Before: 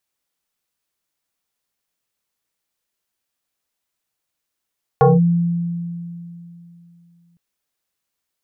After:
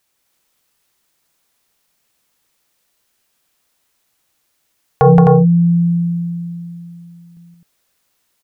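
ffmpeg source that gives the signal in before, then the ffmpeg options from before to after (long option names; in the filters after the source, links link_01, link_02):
-f lavfi -i "aevalsrc='0.447*pow(10,-3*t/2.99)*sin(2*PI*171*t+2.7*clip(1-t/0.19,0,1)*sin(2*PI*1.81*171*t))':duration=2.36:sample_rate=44100"
-filter_complex "[0:a]acompressor=threshold=-19dB:ratio=3,asplit=2[link_01][link_02];[link_02]aecho=0:1:172|259.5:0.447|0.708[link_03];[link_01][link_03]amix=inputs=2:normalize=0,alimiter=level_in=11.5dB:limit=-1dB:release=50:level=0:latency=1"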